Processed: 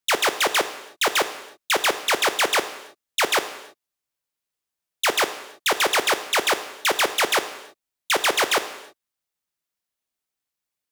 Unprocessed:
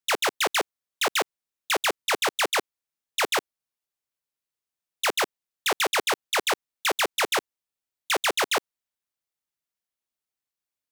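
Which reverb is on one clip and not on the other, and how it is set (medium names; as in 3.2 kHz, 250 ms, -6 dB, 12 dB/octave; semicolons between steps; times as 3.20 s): gated-style reverb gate 360 ms falling, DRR 9.5 dB; trim +3.5 dB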